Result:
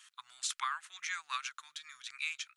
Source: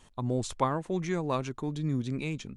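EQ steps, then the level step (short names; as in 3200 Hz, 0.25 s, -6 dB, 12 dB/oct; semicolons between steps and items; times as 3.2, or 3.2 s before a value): elliptic high-pass 1300 Hz, stop band 60 dB; +4.5 dB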